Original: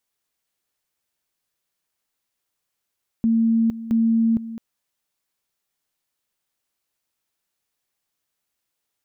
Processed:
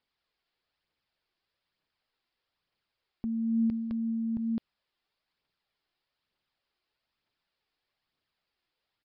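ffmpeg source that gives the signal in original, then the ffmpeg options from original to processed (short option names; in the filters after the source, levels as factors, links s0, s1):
-f lavfi -i "aevalsrc='pow(10,(-15-14.5*gte(mod(t,0.67),0.46))/20)*sin(2*PI*227*t)':d=1.34:s=44100"
-af "alimiter=level_in=1.19:limit=0.0631:level=0:latency=1:release=24,volume=0.841,aphaser=in_gain=1:out_gain=1:delay=3:decay=0.35:speed=1.1:type=triangular,aresample=11025,aresample=44100"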